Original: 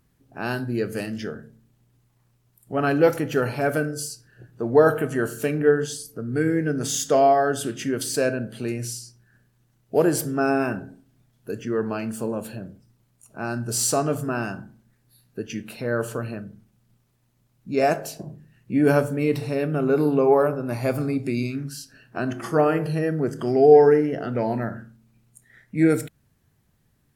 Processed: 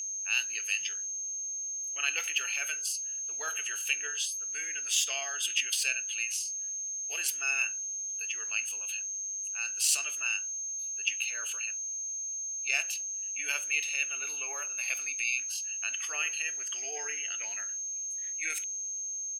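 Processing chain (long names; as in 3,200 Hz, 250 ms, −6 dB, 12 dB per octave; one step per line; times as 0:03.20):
steady tone 6,400 Hz −32 dBFS
tempo change 1.4×
high-pass with resonance 2,700 Hz, resonance Q 7.5
level −3 dB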